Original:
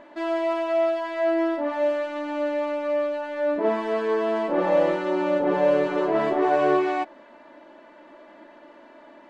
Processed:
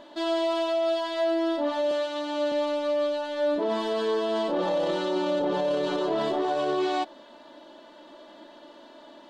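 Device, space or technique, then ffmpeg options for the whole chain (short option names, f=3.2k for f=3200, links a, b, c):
over-bright horn tweeter: -filter_complex "[0:a]asettb=1/sr,asplit=3[a][b][c];[a]atrim=end=1.914[d];[b]atrim=start=1.91:end=2.52,asetpts=PTS-STARTPTS,afade=t=in:d=0.004:c=qsin,afade=t=out:st=0.606:d=0.004:c=qsin,highpass=270[e];[c]atrim=start=2.516[f];[d][e]acrossfade=d=0.004:c1=hsin:c2=qsin[g];[g][f]acrossfade=d=0.004:c1=qsin:c2=hsin,highshelf=f=2.8k:t=q:w=3:g=7,alimiter=limit=-19dB:level=0:latency=1:release=13"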